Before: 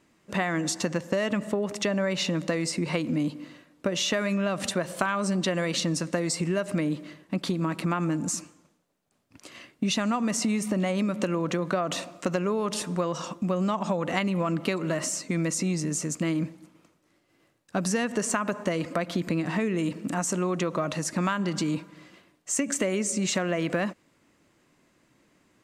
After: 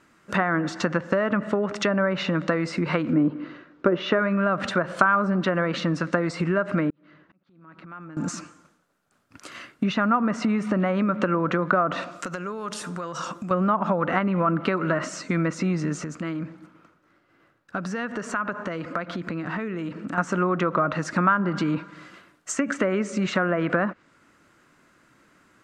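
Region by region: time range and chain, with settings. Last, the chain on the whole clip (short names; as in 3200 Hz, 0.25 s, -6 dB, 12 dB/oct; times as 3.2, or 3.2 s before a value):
3.13–4.19 Gaussian blur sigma 1.9 samples + bell 370 Hz +9 dB 0.53 oct
6.9–8.17 compressor 8:1, threshold -42 dBFS + auto swell 0.597 s + air absorption 230 m
12.11–13.51 high shelf 10000 Hz +12 dB + compressor 4:1, threshold -34 dBFS
16.04–20.18 bell 9300 Hz -12.5 dB 1.8 oct + compressor 2:1, threshold -35 dBFS
whole clip: bell 1400 Hz +12.5 dB 0.56 oct; treble ducked by the level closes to 1400 Hz, closed at -20.5 dBFS; gain +3 dB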